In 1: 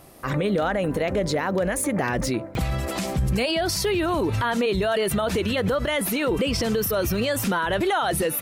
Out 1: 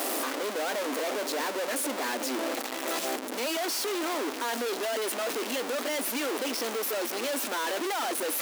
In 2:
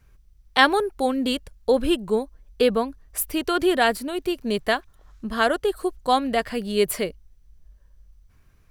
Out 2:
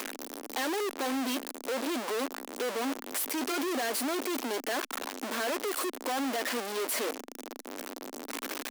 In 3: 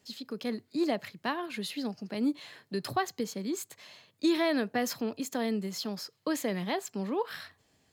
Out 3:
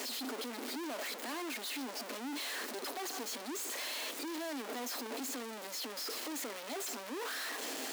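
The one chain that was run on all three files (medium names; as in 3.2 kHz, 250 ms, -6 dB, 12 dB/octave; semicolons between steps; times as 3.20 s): one-bit comparator; elliptic high-pass 250 Hz, stop band 40 dB; trim -5.5 dB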